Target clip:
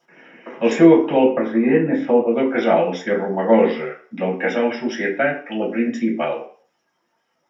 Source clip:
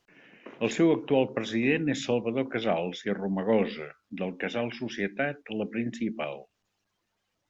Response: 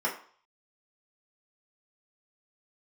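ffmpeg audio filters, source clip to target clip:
-filter_complex "[0:a]asettb=1/sr,asplit=3[s0][s1][s2];[s0]atrim=end=1.244[s3];[s1]atrim=start=1.24:end=2.31,asetpts=PTS-STARTPTS,afade=t=in:d=0.004:c=qsin,afade=t=out:st=1.066:d=0.004:c=qsin,lowpass=1500[s4];[s2]atrim=start=2.306[s5];[s3][s4]acrossfade=d=0.004:c1=hsin:c2=qsin[s6];[s6][s5]acrossfade=d=0.004:c1=qsin:c2=hsin[s7];[1:a]atrim=start_sample=2205,afade=t=out:st=0.35:d=0.01,atrim=end_sample=15876[s8];[s7][s8]afir=irnorm=-1:irlink=0,volume=1.19"

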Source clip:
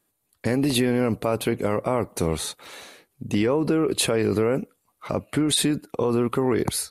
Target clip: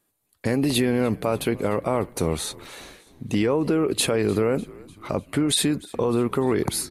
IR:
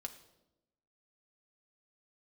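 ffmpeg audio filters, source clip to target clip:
-filter_complex "[0:a]asplit=5[s0][s1][s2][s3][s4];[s1]adelay=299,afreqshift=-55,volume=0.075[s5];[s2]adelay=598,afreqshift=-110,volume=0.0442[s6];[s3]adelay=897,afreqshift=-165,volume=0.026[s7];[s4]adelay=1196,afreqshift=-220,volume=0.0155[s8];[s0][s5][s6][s7][s8]amix=inputs=5:normalize=0"

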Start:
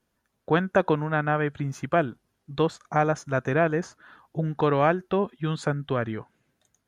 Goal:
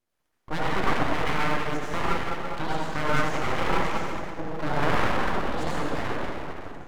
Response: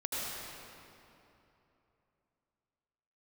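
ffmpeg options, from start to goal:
-filter_complex "[1:a]atrim=start_sample=2205,asetrate=48510,aresample=44100[s0];[0:a][s0]afir=irnorm=-1:irlink=0,aeval=exprs='abs(val(0))':c=same,volume=0.708"

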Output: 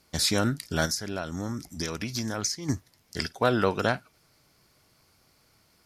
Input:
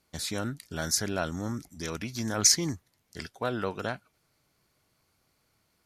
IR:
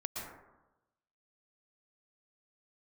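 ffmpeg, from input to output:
-filter_complex "[0:a]equalizer=f=5100:w=5.4:g=6,asplit=3[s0][s1][s2];[s0]afade=t=out:st=0.85:d=0.02[s3];[s1]acompressor=threshold=0.0178:ratio=12,afade=t=in:st=0.85:d=0.02,afade=t=out:st=2.68:d=0.02[s4];[s2]afade=t=in:st=2.68:d=0.02[s5];[s3][s4][s5]amix=inputs=3:normalize=0,asplit=2[s6][s7];[1:a]atrim=start_sample=2205,atrim=end_sample=3087,adelay=54[s8];[s7][s8]afir=irnorm=-1:irlink=0,volume=0.0891[s9];[s6][s9]amix=inputs=2:normalize=0,volume=2.37"

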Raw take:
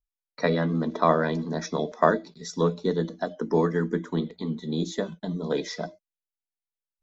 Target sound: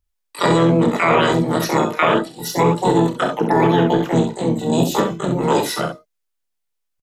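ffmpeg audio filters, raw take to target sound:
-filter_complex "[0:a]asplit=3[s0][s1][s2];[s1]asetrate=33038,aresample=44100,atempo=1.33484,volume=0.562[s3];[s2]asetrate=88200,aresample=44100,atempo=0.5,volume=0.891[s4];[s0][s3][s4]amix=inputs=3:normalize=0,aecho=1:1:30|66:0.355|0.422,alimiter=limit=0.224:level=0:latency=1:release=21,volume=2.24"

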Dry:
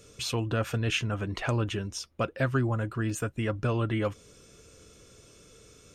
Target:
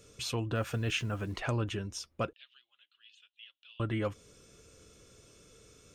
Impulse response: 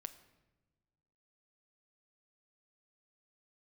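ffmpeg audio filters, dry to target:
-filter_complex "[0:a]asettb=1/sr,asplit=3[s0][s1][s2];[s0]atrim=end=0.554[s3];[s1]atrim=start=0.55:end=1.37,asetpts=PTS-STARTPTS,afade=t=in:d=0.004:c=qsin,afade=t=out:st=0.816:d=0.004:c=qsin,acrusher=bits=8:mix=0:aa=0.5[s4];[s2]atrim=start=1.366[s5];[s3][s4]acrossfade=d=0.004:c1=hsin:c2=qsin[s6];[s6][s5]acrossfade=d=0.004:c1=qsin:c2=hsin,asettb=1/sr,asplit=3[s7][s8][s9];[s7]atrim=end=2.334[s10];[s8]atrim=start=2.33:end=3.8,asetpts=PTS-STARTPTS,afade=t=in:d=0.004:c=qsin,afade=t=out:st=1.466:d=0.004:c=qsin,asuperpass=centerf=3300:order=4:qfactor=3.3[s11];[s9]atrim=start=3.796[s12];[s10][s11]acrossfade=d=0.004:c1=hsin:c2=qsin[s13];[s13][s12]acrossfade=d=0.004:c1=qsin:c2=hsin,volume=0.631"

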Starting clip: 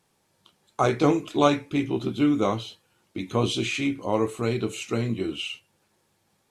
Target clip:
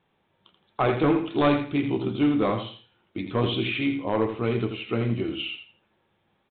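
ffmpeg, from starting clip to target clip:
-af "aresample=8000,asoftclip=type=hard:threshold=0.168,aresample=44100,aecho=1:1:83|166|249:0.398|0.0995|0.0249"

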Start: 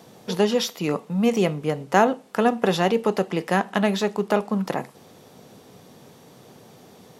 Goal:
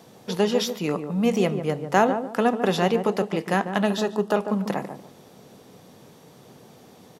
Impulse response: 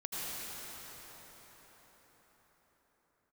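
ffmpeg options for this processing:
-filter_complex "[0:a]asettb=1/sr,asplit=3[s0][s1][s2];[s0]atrim=end=3.854[s3];[s1]atrim=start=3.85:end=4.36,asetpts=PTS-STARTPTS,afade=t=in:d=0.004:c=qsin,afade=t=out:st=0.506:d=0.004:c=qsin,asuperstop=centerf=2200:order=4:qfactor=3.9[s4];[s2]atrim=start=4.356[s5];[s3][s4]acrossfade=d=0.004:c1=hsin:c2=qsin[s6];[s6][s5]acrossfade=d=0.004:c1=qsin:c2=hsin,asplit=2[s7][s8];[s8]adelay=146,lowpass=f=860:p=1,volume=0.447,asplit=2[s9][s10];[s10]adelay=146,lowpass=f=860:p=1,volume=0.32,asplit=2[s11][s12];[s12]adelay=146,lowpass=f=860:p=1,volume=0.32,asplit=2[s13][s14];[s14]adelay=146,lowpass=f=860:p=1,volume=0.32[s15];[s7][s9][s11][s13][s15]amix=inputs=5:normalize=0,volume=0.841"

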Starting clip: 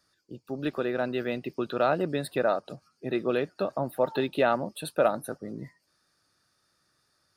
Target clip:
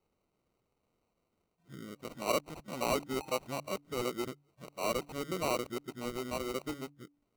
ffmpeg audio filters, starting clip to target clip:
-af "areverse,acrusher=samples=26:mix=1:aa=0.000001,bandreject=f=144.3:t=h:w=4,bandreject=f=288.6:t=h:w=4,volume=0.398"

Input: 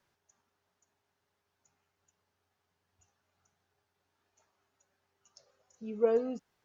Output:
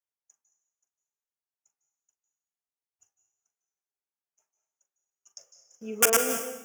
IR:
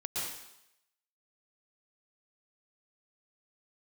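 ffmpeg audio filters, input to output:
-filter_complex "[0:a]acompressor=threshold=0.0355:ratio=2.5,aeval=exprs='(mod(17.8*val(0)+1,2)-1)/17.8':c=same,asuperstop=centerf=4100:order=4:qfactor=1.8,agate=range=0.0224:threshold=0.00112:ratio=3:detection=peak,bass=f=250:g=-11,treble=f=4000:g=13,asplit=2[s0][s1];[1:a]atrim=start_sample=2205,adelay=41[s2];[s1][s2]afir=irnorm=-1:irlink=0,volume=0.299[s3];[s0][s3]amix=inputs=2:normalize=0,volume=2.37"

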